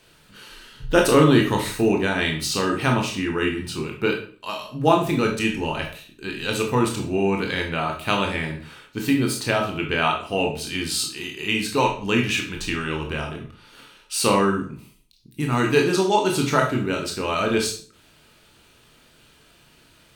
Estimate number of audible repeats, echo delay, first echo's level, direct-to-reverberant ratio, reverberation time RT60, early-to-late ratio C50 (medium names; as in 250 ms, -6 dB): no echo, no echo, no echo, 1.0 dB, 0.45 s, 7.5 dB